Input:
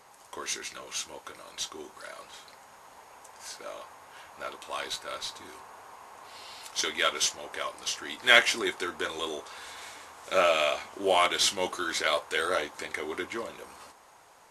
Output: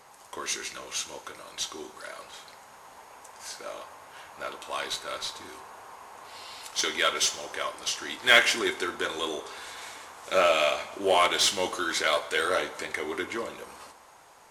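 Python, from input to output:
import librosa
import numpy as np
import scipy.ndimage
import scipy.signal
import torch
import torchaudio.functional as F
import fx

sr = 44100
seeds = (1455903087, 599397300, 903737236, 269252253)

p1 = 10.0 ** (-20.5 / 20.0) * (np.abs((x / 10.0 ** (-20.5 / 20.0) + 3.0) % 4.0 - 2.0) - 1.0)
p2 = x + F.gain(torch.from_numpy(p1), -11.5).numpy()
y = fx.rev_plate(p2, sr, seeds[0], rt60_s=0.96, hf_ratio=0.9, predelay_ms=0, drr_db=11.5)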